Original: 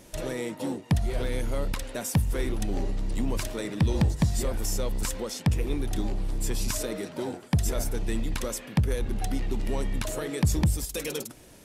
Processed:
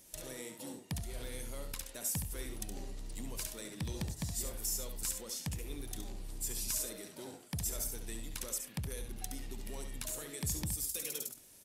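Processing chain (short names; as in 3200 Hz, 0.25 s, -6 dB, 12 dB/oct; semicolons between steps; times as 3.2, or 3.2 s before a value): pre-emphasis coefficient 0.8; tapped delay 69/97 ms -7.5/-19 dB; gain -2.5 dB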